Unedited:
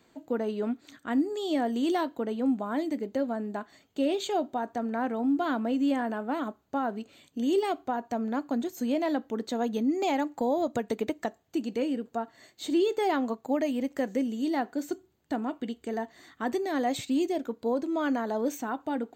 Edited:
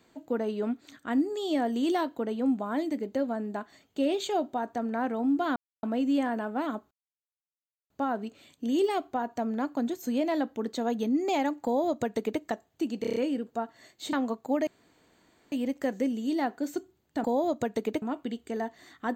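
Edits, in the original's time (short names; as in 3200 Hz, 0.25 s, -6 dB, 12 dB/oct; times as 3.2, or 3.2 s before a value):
5.56 insert silence 0.27 s
6.64 insert silence 0.99 s
10.38–11.16 copy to 15.39
11.75 stutter 0.03 s, 6 plays
12.72–13.13 cut
13.67 insert room tone 0.85 s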